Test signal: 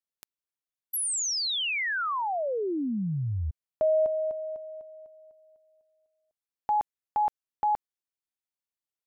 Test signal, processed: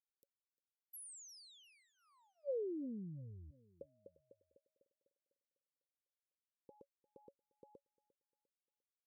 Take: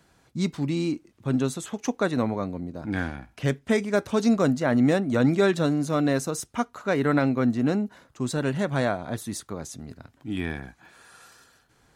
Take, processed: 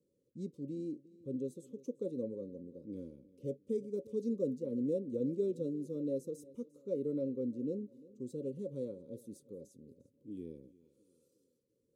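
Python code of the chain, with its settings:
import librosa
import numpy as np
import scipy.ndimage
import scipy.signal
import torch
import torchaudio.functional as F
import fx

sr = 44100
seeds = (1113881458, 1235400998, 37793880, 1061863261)

p1 = scipy.signal.sosfilt(scipy.signal.ellip(6, 1.0, 40, 560.0, 'lowpass', fs=sr, output='sos'), x)
p2 = np.diff(p1, prepend=0.0)
p3 = p2 + fx.echo_feedback(p2, sr, ms=350, feedback_pct=39, wet_db=-21, dry=0)
y = p3 * librosa.db_to_amplitude(14.5)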